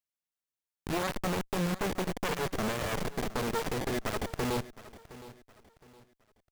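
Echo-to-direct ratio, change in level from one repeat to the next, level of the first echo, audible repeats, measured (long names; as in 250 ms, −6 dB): −16.5 dB, −9.5 dB, −17.0 dB, 2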